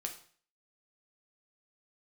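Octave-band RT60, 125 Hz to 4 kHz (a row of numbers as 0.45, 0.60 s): 0.55, 0.50, 0.45, 0.45, 0.45, 0.45 s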